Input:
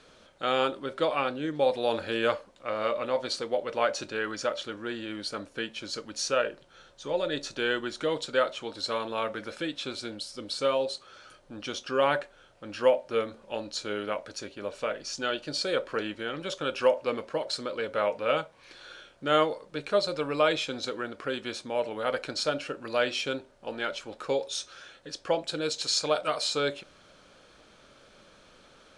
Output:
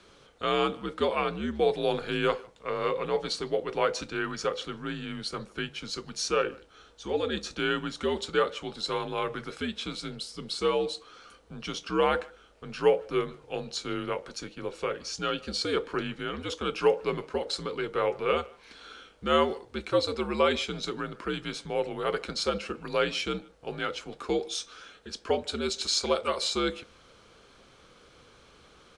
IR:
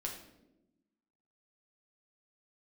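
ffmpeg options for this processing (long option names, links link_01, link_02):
-filter_complex "[0:a]afreqshift=-78,asplit=2[link_01][link_02];[link_02]adelay=150,highpass=300,lowpass=3400,asoftclip=type=hard:threshold=-19dB,volume=-23dB[link_03];[link_01][link_03]amix=inputs=2:normalize=0"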